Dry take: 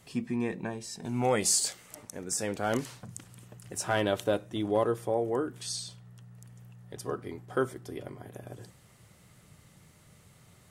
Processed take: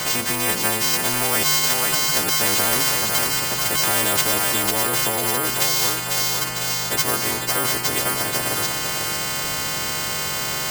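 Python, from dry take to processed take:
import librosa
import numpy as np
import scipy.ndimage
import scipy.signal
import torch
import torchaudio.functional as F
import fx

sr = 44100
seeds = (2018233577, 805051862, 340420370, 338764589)

p1 = fx.freq_snap(x, sr, grid_st=2)
p2 = np.repeat(p1[::4], 4)[:len(p1)]
p3 = fx.echo_thinned(p2, sr, ms=499, feedback_pct=35, hz=910.0, wet_db=-11)
p4 = fx.over_compress(p3, sr, threshold_db=-33.0, ratio=-1.0)
p5 = p3 + (p4 * 10.0 ** (2.0 / 20.0))
p6 = fx.low_shelf(p5, sr, hz=250.0, db=-9.5)
y = fx.spectral_comp(p6, sr, ratio=4.0)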